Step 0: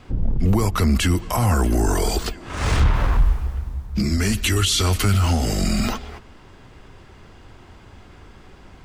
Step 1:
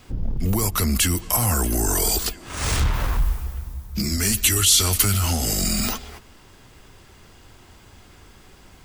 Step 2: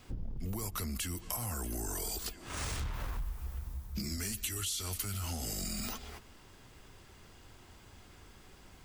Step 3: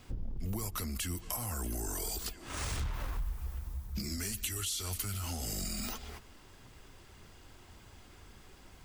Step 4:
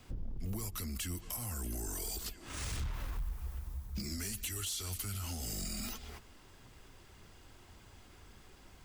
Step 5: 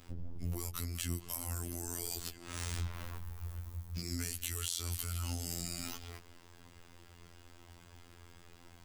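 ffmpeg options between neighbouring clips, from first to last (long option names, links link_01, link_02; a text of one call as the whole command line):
ffmpeg -i in.wav -af "aemphasis=mode=production:type=75fm,volume=-3.5dB" out.wav
ffmpeg -i in.wav -af "acompressor=threshold=-27dB:ratio=6,volume=-7.5dB" out.wav
ffmpeg -i in.wav -af "aphaser=in_gain=1:out_gain=1:delay=4:decay=0.22:speed=1.8:type=triangular" out.wav
ffmpeg -i in.wav -filter_complex "[0:a]acrossover=split=390|1600|4600[link_01][link_02][link_03][link_04];[link_02]alimiter=level_in=19.5dB:limit=-24dB:level=0:latency=1:release=274,volume=-19.5dB[link_05];[link_01][link_05][link_03][link_04]amix=inputs=4:normalize=0,asoftclip=type=hard:threshold=-30dB,volume=-2dB" out.wav
ffmpeg -i in.wav -filter_complex "[0:a]afftfilt=real='hypot(re,im)*cos(PI*b)':imag='0':win_size=2048:overlap=0.75,acrossover=split=440[link_01][link_02];[link_02]acrusher=bits=5:mode=log:mix=0:aa=0.000001[link_03];[link_01][link_03]amix=inputs=2:normalize=0,volume=3.5dB" out.wav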